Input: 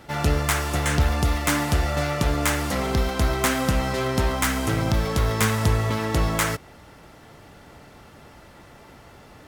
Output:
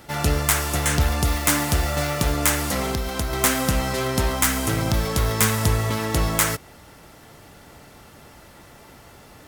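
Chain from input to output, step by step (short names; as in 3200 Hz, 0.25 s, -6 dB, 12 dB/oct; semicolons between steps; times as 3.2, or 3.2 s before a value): high shelf 6200 Hz +10 dB; 1.27–2.32 requantised 6-bit, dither none; 2.9–3.33 compressor 5:1, threshold -22 dBFS, peak gain reduction 6.5 dB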